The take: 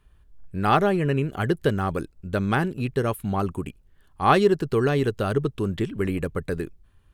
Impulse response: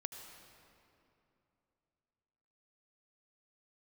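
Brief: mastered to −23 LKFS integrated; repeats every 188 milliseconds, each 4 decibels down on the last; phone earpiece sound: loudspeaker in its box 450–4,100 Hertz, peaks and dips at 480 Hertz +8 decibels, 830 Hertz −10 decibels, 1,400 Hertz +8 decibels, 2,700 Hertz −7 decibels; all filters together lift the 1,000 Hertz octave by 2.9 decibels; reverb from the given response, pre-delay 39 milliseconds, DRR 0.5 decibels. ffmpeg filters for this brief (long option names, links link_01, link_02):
-filter_complex "[0:a]equalizer=frequency=1000:width_type=o:gain=4,aecho=1:1:188|376|564|752|940|1128|1316|1504|1692:0.631|0.398|0.25|0.158|0.0994|0.0626|0.0394|0.0249|0.0157,asplit=2[link_01][link_02];[1:a]atrim=start_sample=2205,adelay=39[link_03];[link_02][link_03]afir=irnorm=-1:irlink=0,volume=1.5dB[link_04];[link_01][link_04]amix=inputs=2:normalize=0,highpass=450,equalizer=frequency=480:width_type=q:width=4:gain=8,equalizer=frequency=830:width_type=q:width=4:gain=-10,equalizer=frequency=1400:width_type=q:width=4:gain=8,equalizer=frequency=2700:width_type=q:width=4:gain=-7,lowpass=frequency=4100:width=0.5412,lowpass=frequency=4100:width=1.3066,volume=-4dB"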